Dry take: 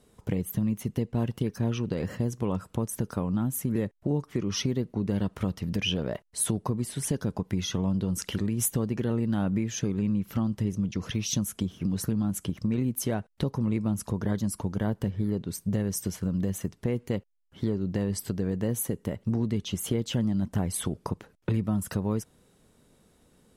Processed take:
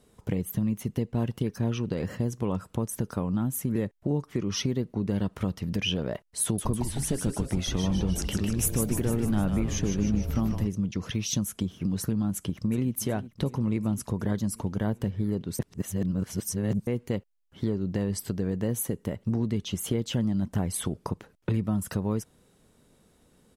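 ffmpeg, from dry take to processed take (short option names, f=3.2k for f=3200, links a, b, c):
-filter_complex "[0:a]asettb=1/sr,asplit=3[a][b][c];[a]atrim=end=6.434[d];[b]atrim=start=6.43:end=10.67,asetpts=PTS-STARTPTS,afade=t=in:d=0.004:c=qsin,afade=t=out:st=4.236:d=0.004:c=qsin,asplit=9[e][f][g][h][i][j][k][l][m];[f]adelay=152,afreqshift=-130,volume=-5.5dB[n];[g]adelay=304,afreqshift=-260,volume=-9.9dB[o];[h]adelay=456,afreqshift=-390,volume=-14.4dB[p];[i]adelay=608,afreqshift=-520,volume=-18.8dB[q];[j]adelay=760,afreqshift=-650,volume=-23.2dB[r];[k]adelay=912,afreqshift=-780,volume=-27.7dB[s];[l]adelay=1064,afreqshift=-910,volume=-32.1dB[t];[m]adelay=1216,afreqshift=-1040,volume=-36.6dB[u];[e][n][o][p][q][r][s][t][u]amix=inputs=9:normalize=0,atrim=end_sample=186984[v];[c]atrim=start=10.666[w];[d][v]acrossfade=d=0.004:c1=hsin:c2=qsin[x];[x][w]acrossfade=d=0.004:c1=qsin:c2=hsin,asplit=2[y][z];[z]afade=t=in:st=12.34:d=0.01,afade=t=out:st=12.96:d=0.01,aecho=0:1:370|740|1110|1480|1850|2220|2590|2960|3330|3700:0.158489|0.118867|0.0891502|0.0668627|0.050147|0.0376103|0.0282077|0.0211558|0.0158668|0.0119001[aa];[y][aa]amix=inputs=2:normalize=0,asplit=3[ab][ac][ad];[ab]atrim=end=15.592[ae];[ac]atrim=start=15.588:end=16.872,asetpts=PTS-STARTPTS,areverse[af];[ad]atrim=start=16.868[ag];[ae][af]acrossfade=d=0.004:c1=hsin:c2=hsin[ah];[ah][ag]acrossfade=d=0.004:c1=hsin:c2=hsin"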